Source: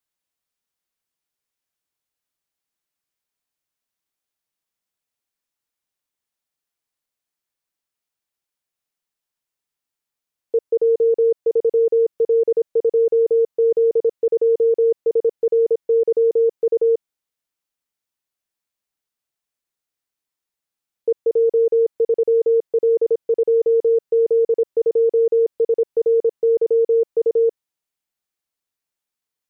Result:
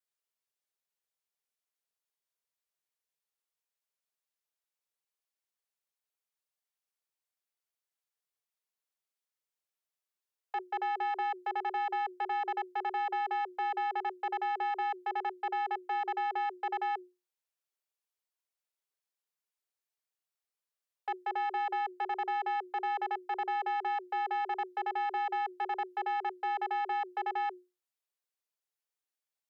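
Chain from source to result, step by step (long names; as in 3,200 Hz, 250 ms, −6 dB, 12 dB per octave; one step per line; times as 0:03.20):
dynamic equaliser 640 Hz, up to −5 dB, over −29 dBFS, Q 1.1
tube saturation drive 26 dB, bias 0.6
frequency shifter +360 Hz
level −4.5 dB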